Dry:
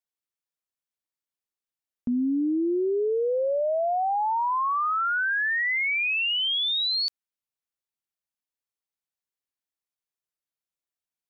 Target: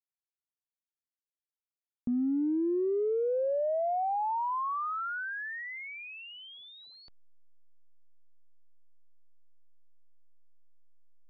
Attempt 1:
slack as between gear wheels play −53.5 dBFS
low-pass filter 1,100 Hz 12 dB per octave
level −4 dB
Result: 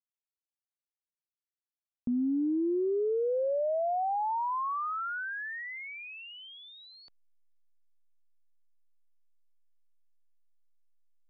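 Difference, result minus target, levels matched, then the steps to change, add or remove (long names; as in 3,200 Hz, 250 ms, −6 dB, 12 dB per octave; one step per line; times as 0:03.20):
slack as between gear wheels: distortion −11 dB
change: slack as between gear wheels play −42.5 dBFS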